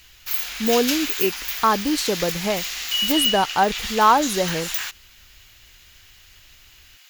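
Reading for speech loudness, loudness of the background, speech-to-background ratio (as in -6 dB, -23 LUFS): -22.0 LUFS, -24.0 LUFS, 2.0 dB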